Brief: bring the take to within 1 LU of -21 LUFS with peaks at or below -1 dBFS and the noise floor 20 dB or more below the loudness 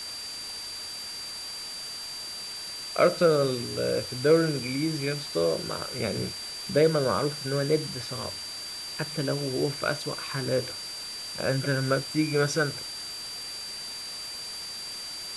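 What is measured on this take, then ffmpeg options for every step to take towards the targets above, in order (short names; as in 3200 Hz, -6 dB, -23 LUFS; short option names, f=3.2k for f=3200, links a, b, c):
steady tone 4700 Hz; tone level -36 dBFS; noise floor -38 dBFS; noise floor target -49 dBFS; loudness -28.5 LUFS; peak -9.0 dBFS; loudness target -21.0 LUFS
-> -af "bandreject=f=4.7k:w=30"
-af "afftdn=nr=11:nf=-38"
-af "volume=7.5dB"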